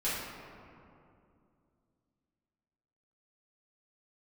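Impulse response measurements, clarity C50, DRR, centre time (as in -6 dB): -1.5 dB, -11.0 dB, 119 ms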